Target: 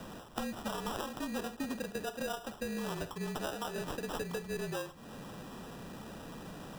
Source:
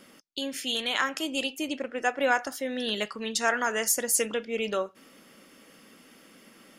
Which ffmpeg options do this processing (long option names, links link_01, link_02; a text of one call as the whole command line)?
ffmpeg -i in.wav -filter_complex "[0:a]aeval=exprs='val(0)+0.5*0.0133*sgn(val(0))':channel_layout=same,acrossover=split=9400[link_01][link_02];[link_02]acompressor=threshold=-52dB:ratio=4:attack=1:release=60[link_03];[link_01][link_03]amix=inputs=2:normalize=0,agate=range=-10dB:threshold=-34dB:ratio=16:detection=peak,equalizer=frequency=100:width_type=o:width=1.8:gain=9,bandreject=frequency=6400:width=12,acompressor=threshold=-40dB:ratio=8,acrusher=samples=20:mix=1:aa=0.000001,afreqshift=-38,volume=4.5dB" out.wav